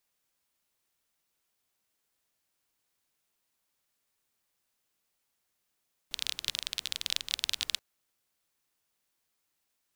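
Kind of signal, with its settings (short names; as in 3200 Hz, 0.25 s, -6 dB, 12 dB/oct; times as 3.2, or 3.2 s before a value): rain from filtered ticks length 1.68 s, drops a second 24, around 3600 Hz, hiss -22 dB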